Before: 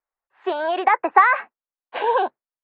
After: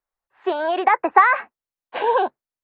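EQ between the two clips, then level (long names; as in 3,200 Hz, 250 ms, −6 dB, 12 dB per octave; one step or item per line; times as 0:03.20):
low-shelf EQ 210 Hz +9 dB
0.0 dB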